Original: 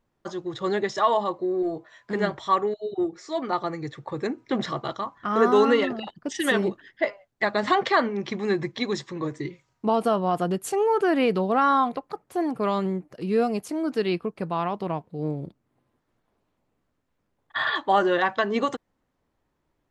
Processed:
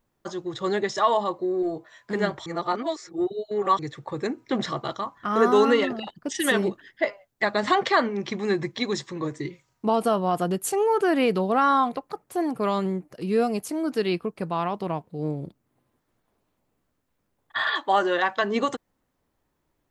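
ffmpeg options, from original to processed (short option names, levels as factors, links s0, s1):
-filter_complex "[0:a]asettb=1/sr,asplit=3[s0][s1][s2];[s0]atrim=end=17.604[s3];[s1]atrim=start=17.6:end=18.42,asetpts=PTS-STARTPTS,afade=t=in:d=0.004:c=qsin,afade=t=out:st=0.816:d=0.004:c=qsin,highpass=f=340:p=1[s4];[s2]atrim=start=18.416[s5];[s3][s4]acrossfade=d=0.004:c1=hsin:c2=qsin[s6];[s6][s5]acrossfade=d=0.004:c1=qsin:c2=hsin,asplit=3[s7][s8][s9];[s7]atrim=end=2.462[s10];[s8]atrim=start=2.458:end=3.792,asetpts=PTS-STARTPTS,areverse[s11];[s9]atrim=start=3.788[s12];[s10][s11]acrossfade=d=0.004:c1=hsin:c2=hsin[s13];[s13][s12]acrossfade=d=0.004:c1=hsin:c2=hsin,highshelf=f=8000:g=10"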